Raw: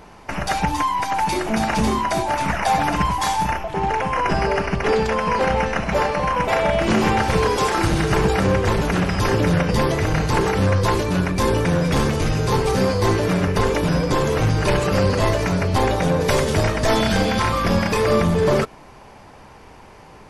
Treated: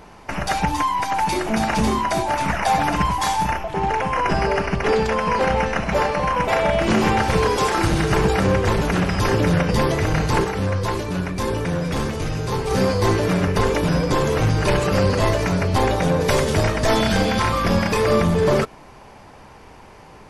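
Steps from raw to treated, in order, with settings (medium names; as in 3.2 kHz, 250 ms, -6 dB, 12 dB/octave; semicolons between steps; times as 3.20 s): 10.44–12.71 s: flange 1.9 Hz, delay 9.7 ms, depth 1.8 ms, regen -83%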